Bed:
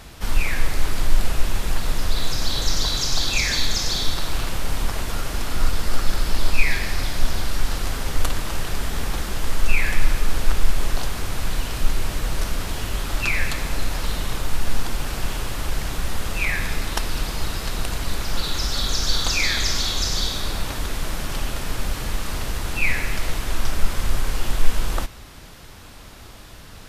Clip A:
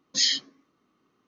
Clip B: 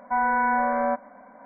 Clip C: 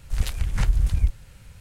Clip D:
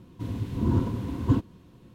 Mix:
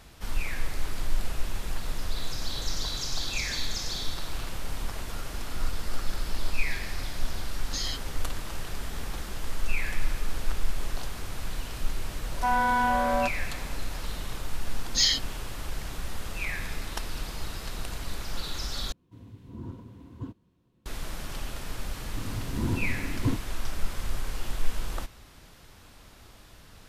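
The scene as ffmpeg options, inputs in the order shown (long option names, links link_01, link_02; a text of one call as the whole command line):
ffmpeg -i bed.wav -i cue0.wav -i cue1.wav -i cue2.wav -i cue3.wav -filter_complex "[1:a]asplit=2[link_01][link_02];[4:a]asplit=2[link_03][link_04];[0:a]volume=-9.5dB[link_05];[link_01]acompressor=threshold=-28dB:ratio=6:attack=3.2:release=140:knee=1:detection=peak[link_06];[2:a]asoftclip=type=tanh:threshold=-16.5dB[link_07];[link_02]acontrast=87[link_08];[link_05]asplit=2[link_09][link_10];[link_09]atrim=end=18.924[link_11];[link_03]atrim=end=1.94,asetpts=PTS-STARTPTS,volume=-16dB[link_12];[link_10]atrim=start=20.856[link_13];[link_06]atrim=end=1.27,asetpts=PTS-STARTPTS,volume=-2dB,afade=type=in:duration=0.004:curve=hsin,afade=type=out:start_time=1.266:duration=0.004:curve=hsin,adelay=7580[link_14];[link_07]atrim=end=1.45,asetpts=PTS-STARTPTS,volume=-0.5dB,afade=type=in:duration=0.004:curve=hsin,afade=type=out:start_time=1.446:duration=0.004:curve=hsin,adelay=12320[link_15];[link_08]atrim=end=1.27,asetpts=PTS-STARTPTS,volume=-7dB,afade=type=in:duration=0.004:curve=hsin,afade=type=out:start_time=1.266:duration=0.004:curve=hsin,adelay=14800[link_16];[link_04]atrim=end=1.94,asetpts=PTS-STARTPTS,volume=-5dB,afade=type=in:duration=0.004:curve=hsin,afade=type=out:start_time=1.936:duration=0.004:curve=hsin,adelay=968436S[link_17];[link_11][link_12]acrossfade=duration=0.004:curve1=hsin:curve2=hsin[link_18];[link_18][link_13]acrossfade=duration=0.004:curve1=hsin:curve2=hsin[link_19];[link_19][link_14][link_15][link_16][link_17]amix=inputs=5:normalize=0" out.wav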